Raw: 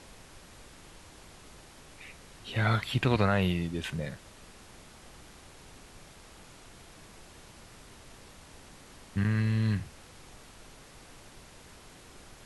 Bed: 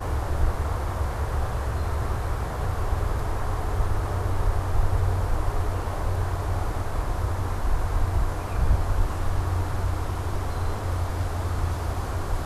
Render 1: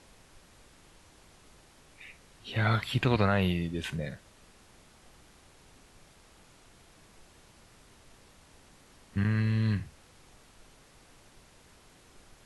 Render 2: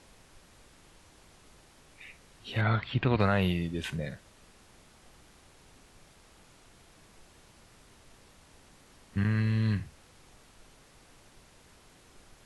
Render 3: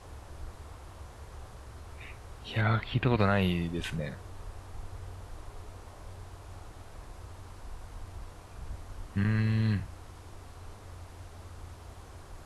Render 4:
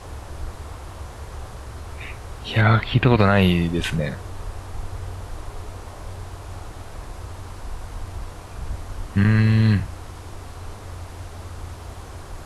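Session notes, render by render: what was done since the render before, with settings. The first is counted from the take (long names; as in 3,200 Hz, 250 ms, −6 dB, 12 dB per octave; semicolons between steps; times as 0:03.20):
noise reduction from a noise print 6 dB
0:02.61–0:03.20: high-frequency loss of the air 220 metres
mix in bed −20 dB
level +11 dB; brickwall limiter −3 dBFS, peak gain reduction 2.5 dB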